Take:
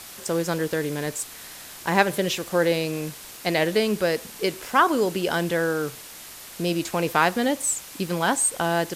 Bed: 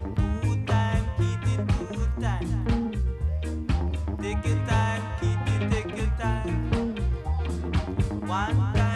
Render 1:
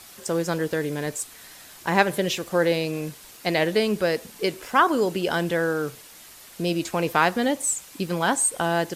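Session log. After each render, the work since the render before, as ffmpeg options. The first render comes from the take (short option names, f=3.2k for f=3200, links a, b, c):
-af "afftdn=nr=6:nf=-42"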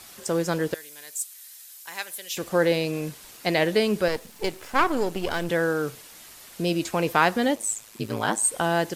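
-filter_complex "[0:a]asettb=1/sr,asplit=3[a][b][c];[a]atrim=end=0.744[d];[b]atrim=start=0.74:end=2.37,asetpts=PTS-STARTPTS,afade=t=in:d=0.004:c=qsin,afade=t=out:st=1.626:d=0.004:c=qsin,aderivative[e];[c]atrim=start=2.366[f];[d][e]acrossfade=d=0.004:c1=hsin:c2=qsin[g];[g][f]acrossfade=d=0.004:c1=qsin:c2=hsin,asettb=1/sr,asplit=3[h][i][j];[h]atrim=end=4.084[k];[i]atrim=start=4.08:end=5.49,asetpts=PTS-STARTPTS,afade=t=in:d=0.004:c=qsin,afade=t=out:st=1.406:d=0.004:c=qsin,aeval=exprs='if(lt(val(0),0),0.251*val(0),val(0))':c=same[l];[j]atrim=start=5.486[m];[k][l]acrossfade=d=0.004:c1=hsin:c2=qsin[n];[n][m]acrossfade=d=0.004:c1=qsin:c2=hsin,asettb=1/sr,asplit=3[o][p][q];[o]atrim=end=7.554[r];[p]atrim=start=7.55:end=8.44,asetpts=PTS-STARTPTS,afade=t=in:d=0.004:c=qsin,afade=t=out:st=0.886:d=0.004:c=qsin,aeval=exprs='val(0)*sin(2*PI*54*n/s)':c=same[s];[q]atrim=start=8.436[t];[r][s]acrossfade=d=0.004:c1=hsin:c2=qsin[u];[u][t]acrossfade=d=0.004:c1=qsin:c2=hsin"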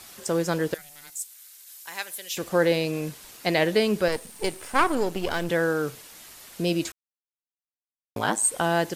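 -filter_complex "[0:a]asplit=3[a][b][c];[a]afade=t=out:st=0.77:d=0.02[d];[b]aeval=exprs='val(0)*sin(2*PI*290*n/s)':c=same,afade=t=in:st=0.77:d=0.02,afade=t=out:st=1.65:d=0.02[e];[c]afade=t=in:st=1.65:d=0.02[f];[d][e][f]amix=inputs=3:normalize=0,asettb=1/sr,asplit=3[g][h][i];[g]atrim=end=4.124[j];[h]atrim=start=4.12:end=4.95,asetpts=PTS-STARTPTS,afade=t=in:d=0.004:c=qsin,afade=t=out:st=0.826:d=0.004:c=qsin,equalizer=f=9k:w=5.9:g=14.5[k];[i]atrim=start=4.946[l];[j][k]acrossfade=d=0.004:c1=hsin:c2=qsin[m];[m][l]acrossfade=d=0.004:c1=qsin:c2=hsin,asplit=3[n][o][p];[n]atrim=end=6.92,asetpts=PTS-STARTPTS,afade=t=out:st=6.916:d=0.004:c=hsin[q];[o]atrim=start=6.92:end=8.16,asetpts=PTS-STARTPTS,volume=0[r];[p]atrim=start=8.16,asetpts=PTS-STARTPTS,afade=t=in:d=0.004:c=hsin[s];[q][r][s]concat=n=3:v=0:a=1"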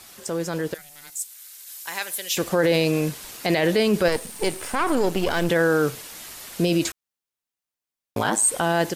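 -af "alimiter=limit=-18.5dB:level=0:latency=1:release=18,dynaudnorm=f=890:g=3:m=7dB"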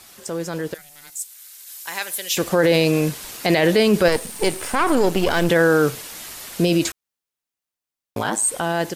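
-af "dynaudnorm=f=320:g=13:m=4dB"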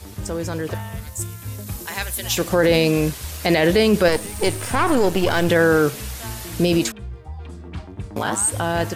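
-filter_complex "[1:a]volume=-7dB[a];[0:a][a]amix=inputs=2:normalize=0"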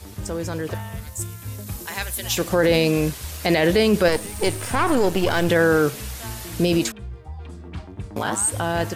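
-af "volume=-1.5dB"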